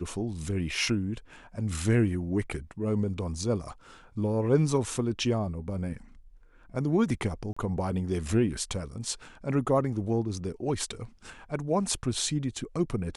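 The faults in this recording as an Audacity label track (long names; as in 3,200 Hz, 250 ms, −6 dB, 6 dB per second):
7.530000	7.570000	drop-out 35 ms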